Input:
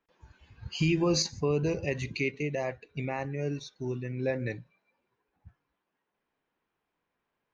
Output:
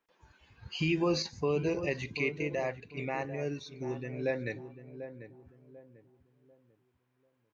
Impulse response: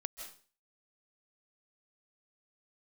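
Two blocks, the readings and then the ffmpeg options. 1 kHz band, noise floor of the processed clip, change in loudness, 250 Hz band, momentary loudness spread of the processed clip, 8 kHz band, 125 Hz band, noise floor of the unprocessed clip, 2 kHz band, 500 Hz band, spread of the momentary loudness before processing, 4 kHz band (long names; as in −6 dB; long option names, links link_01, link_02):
0.0 dB, −76 dBFS, −2.5 dB, −2.5 dB, 16 LU, can't be measured, −5.5 dB, −84 dBFS, 0.0 dB, −1.0 dB, 11 LU, −4.0 dB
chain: -filter_complex "[0:a]acrossover=split=4600[link_01][link_02];[link_02]acompressor=threshold=-56dB:ratio=4:attack=1:release=60[link_03];[link_01][link_03]amix=inputs=2:normalize=0,lowshelf=frequency=210:gain=-8.5,asplit=2[link_04][link_05];[link_05]adelay=743,lowpass=frequency=960:poles=1,volume=-10dB,asplit=2[link_06][link_07];[link_07]adelay=743,lowpass=frequency=960:poles=1,volume=0.35,asplit=2[link_08][link_09];[link_09]adelay=743,lowpass=frequency=960:poles=1,volume=0.35,asplit=2[link_10][link_11];[link_11]adelay=743,lowpass=frequency=960:poles=1,volume=0.35[link_12];[link_06][link_08][link_10][link_12]amix=inputs=4:normalize=0[link_13];[link_04][link_13]amix=inputs=2:normalize=0"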